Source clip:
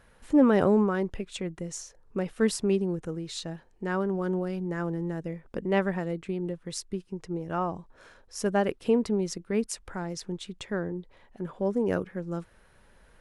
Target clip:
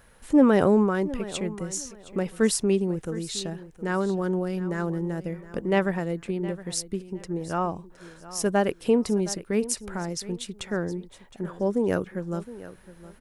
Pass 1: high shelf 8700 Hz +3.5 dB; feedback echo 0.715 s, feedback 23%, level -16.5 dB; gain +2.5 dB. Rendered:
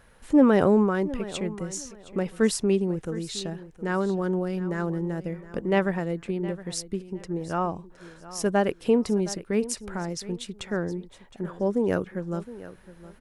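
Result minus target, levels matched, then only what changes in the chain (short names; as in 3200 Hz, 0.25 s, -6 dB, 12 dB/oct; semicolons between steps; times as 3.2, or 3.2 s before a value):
8000 Hz band -3.0 dB
change: high shelf 8700 Hz +11.5 dB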